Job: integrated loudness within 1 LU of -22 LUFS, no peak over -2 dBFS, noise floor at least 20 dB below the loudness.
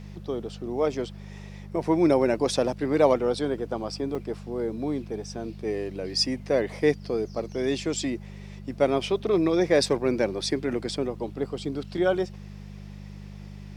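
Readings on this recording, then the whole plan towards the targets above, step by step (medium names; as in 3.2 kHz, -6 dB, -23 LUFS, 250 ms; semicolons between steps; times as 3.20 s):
dropouts 1; longest dropout 4.0 ms; hum 50 Hz; highest harmonic 200 Hz; hum level -38 dBFS; loudness -26.5 LUFS; peak level -8.0 dBFS; loudness target -22.0 LUFS
-> interpolate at 4.15 s, 4 ms; de-hum 50 Hz, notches 4; trim +4.5 dB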